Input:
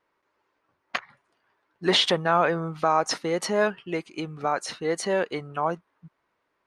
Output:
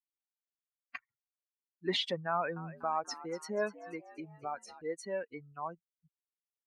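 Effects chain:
spectral dynamics exaggerated over time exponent 2
high-shelf EQ 5,800 Hz −5.5 dB
0:02.32–0:04.82: echo with shifted repeats 242 ms, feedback 46%, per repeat +76 Hz, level −16 dB
level −8.5 dB

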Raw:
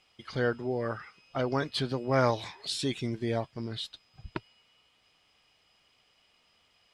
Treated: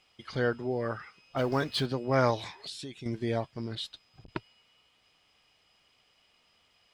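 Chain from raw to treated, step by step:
0:01.37–0:01.86: mu-law and A-law mismatch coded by mu
0:02.55–0:03.06: downward compressor 5 to 1, threshold −40 dBFS, peak gain reduction 12.5 dB
0:03.75–0:04.30: saturating transformer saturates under 820 Hz

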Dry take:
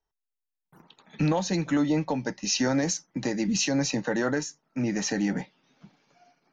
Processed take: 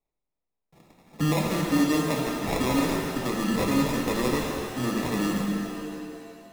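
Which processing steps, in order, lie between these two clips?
decimation without filtering 29×
reverb with rising layers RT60 2.5 s, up +7 semitones, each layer −8 dB, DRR −0.5 dB
level −2 dB

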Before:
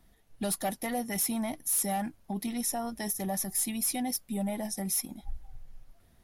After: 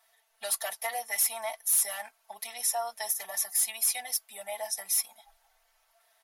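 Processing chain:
inverse Chebyshev high-pass filter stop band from 330 Hz, stop band 40 dB
comb filter 4.5 ms, depth 94%
level +1 dB

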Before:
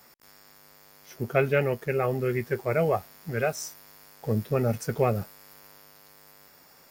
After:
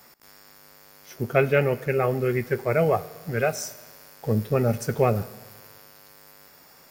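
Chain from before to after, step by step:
four-comb reverb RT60 1.4 s, DRR 17 dB
level +3 dB

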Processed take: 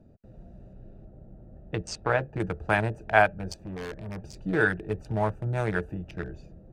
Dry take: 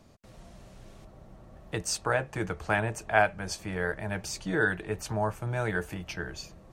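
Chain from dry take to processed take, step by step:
adaptive Wiener filter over 41 samples
0:00.73–0:02.40: high-frequency loss of the air 110 metres
0:03.57–0:04.22: tube saturation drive 36 dB, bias 0.4
level +3.5 dB

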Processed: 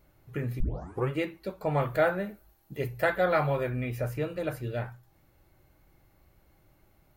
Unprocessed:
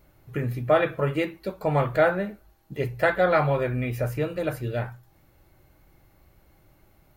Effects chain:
0:00.60: tape start 0.49 s
0:01.81–0:03.70: high-shelf EQ 10,000 Hz +10.5 dB
level −4.5 dB

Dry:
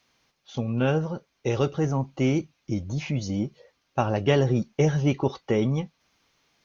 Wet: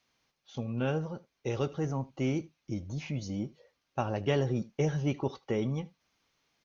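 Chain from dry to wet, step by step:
single-tap delay 77 ms −22 dB
level −7.5 dB

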